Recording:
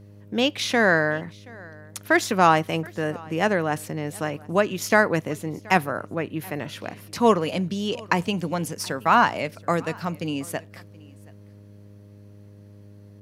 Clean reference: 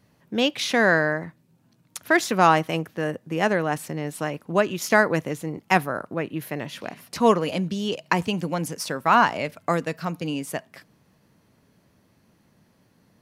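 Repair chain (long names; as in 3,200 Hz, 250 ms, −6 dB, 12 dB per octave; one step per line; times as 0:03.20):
hum removal 101.9 Hz, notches 6
echo removal 726 ms −24 dB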